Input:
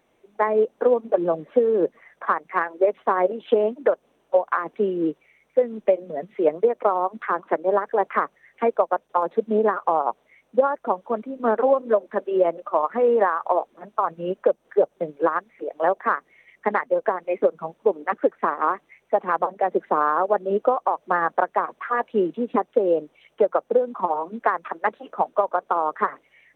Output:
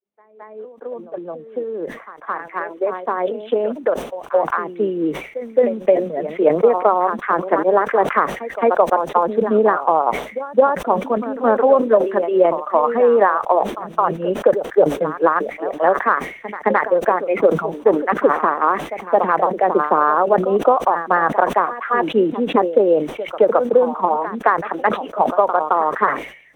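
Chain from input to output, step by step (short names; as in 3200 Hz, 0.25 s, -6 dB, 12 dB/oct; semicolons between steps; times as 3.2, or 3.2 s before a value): opening faded in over 6.47 s; reverse echo 0.217 s -13.5 dB; sustainer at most 100 dB/s; gain +5 dB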